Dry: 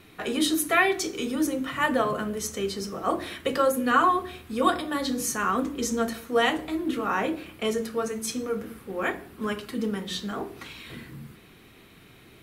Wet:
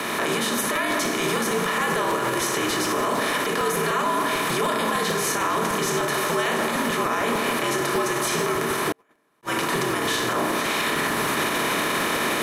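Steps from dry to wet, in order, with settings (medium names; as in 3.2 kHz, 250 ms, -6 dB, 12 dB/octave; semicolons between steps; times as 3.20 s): spectral levelling over time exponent 0.4; recorder AGC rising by 18 dB/s; high-pass 360 Hz 12 dB/octave; echo whose repeats swap between lows and highs 226 ms, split 1.9 kHz, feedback 62%, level -9.5 dB; frequency shift -83 Hz; peak limiter -14.5 dBFS, peak gain reduction 10 dB; 8.92–9.43 s: gate -17 dBFS, range -43 dB; crackling interface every 0.15 s, samples 256, repeat, from 0.75 s; attacks held to a fixed rise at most 560 dB/s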